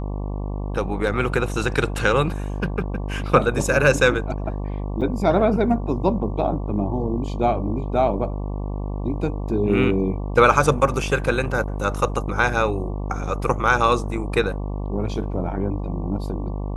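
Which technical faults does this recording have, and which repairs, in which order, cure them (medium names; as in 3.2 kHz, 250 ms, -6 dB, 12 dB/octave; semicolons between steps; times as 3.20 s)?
buzz 50 Hz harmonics 23 -27 dBFS
5.01–5.02 s: dropout 6.5 ms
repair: de-hum 50 Hz, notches 23; interpolate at 5.01 s, 6.5 ms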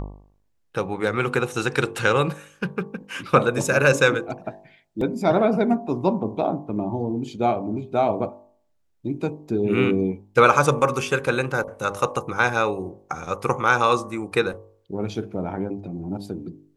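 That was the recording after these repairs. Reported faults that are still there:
nothing left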